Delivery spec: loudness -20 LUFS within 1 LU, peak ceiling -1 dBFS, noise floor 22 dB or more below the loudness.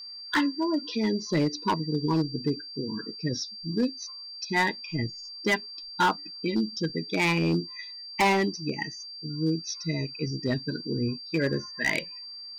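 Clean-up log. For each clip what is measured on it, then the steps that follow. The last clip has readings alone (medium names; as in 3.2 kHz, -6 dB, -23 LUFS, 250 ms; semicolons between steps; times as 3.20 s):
clipped samples 1.0%; clipping level -18.5 dBFS; steady tone 4.7 kHz; tone level -39 dBFS; loudness -28.5 LUFS; peak level -18.5 dBFS; loudness target -20.0 LUFS
-> clip repair -18.5 dBFS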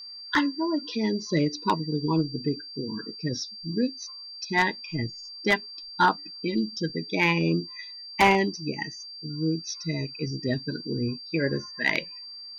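clipped samples 0.0%; steady tone 4.7 kHz; tone level -39 dBFS
-> band-stop 4.7 kHz, Q 30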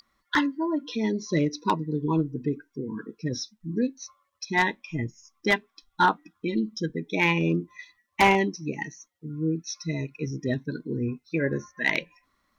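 steady tone not found; loudness -27.5 LUFS; peak level -9.0 dBFS; loudness target -20.0 LUFS
-> trim +7.5 dB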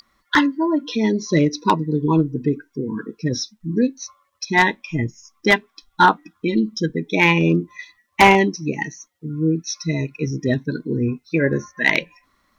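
loudness -20.0 LUFS; peak level -1.5 dBFS; noise floor -68 dBFS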